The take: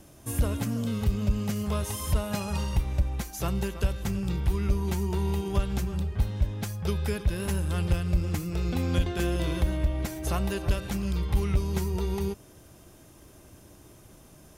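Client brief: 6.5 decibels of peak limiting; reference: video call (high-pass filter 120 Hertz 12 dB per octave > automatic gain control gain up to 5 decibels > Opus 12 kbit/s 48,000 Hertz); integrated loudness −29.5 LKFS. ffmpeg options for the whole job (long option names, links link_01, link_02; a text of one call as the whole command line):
ffmpeg -i in.wav -af "alimiter=limit=-22dB:level=0:latency=1,highpass=120,dynaudnorm=maxgain=5dB,volume=6dB" -ar 48000 -c:a libopus -b:a 12k out.opus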